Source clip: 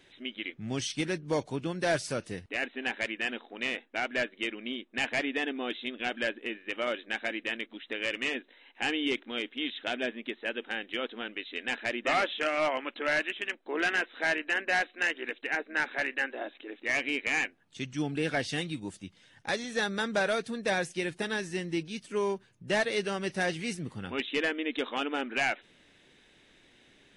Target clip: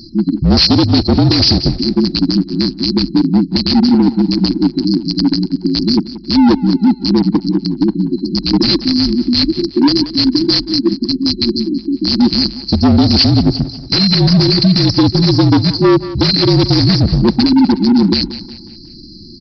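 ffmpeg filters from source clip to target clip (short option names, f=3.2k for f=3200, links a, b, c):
-filter_complex "[0:a]highshelf=f=2k:t=q:w=3:g=9,afftfilt=real='re*(1-between(b*sr/4096,410,4100))':imag='im*(1-between(b*sr/4096,410,4100))':win_size=4096:overlap=0.75,atempo=1.4,aresample=11025,volume=35dB,asoftclip=hard,volume=-35dB,aresample=44100,afreqshift=-47,asplit=2[a][b];[b]aecho=0:1:181|362|543|724:0.158|0.0713|0.0321|0.0144[c];[a][c]amix=inputs=2:normalize=0,alimiter=level_in=30.5dB:limit=-1dB:release=50:level=0:latency=1,volume=-1dB"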